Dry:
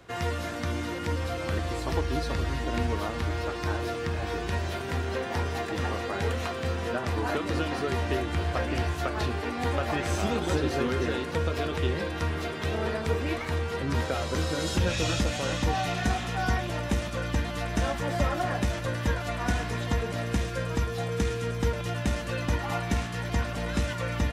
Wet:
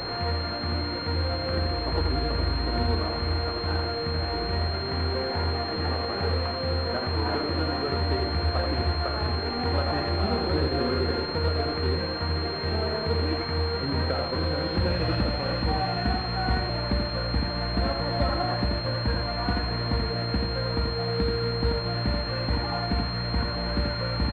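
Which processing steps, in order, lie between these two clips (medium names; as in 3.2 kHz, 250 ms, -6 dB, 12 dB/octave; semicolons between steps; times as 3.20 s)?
one-bit delta coder 32 kbps, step -27 dBFS; on a send: delay 84 ms -4 dB; on the sum: class-D stage that switches slowly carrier 4.2 kHz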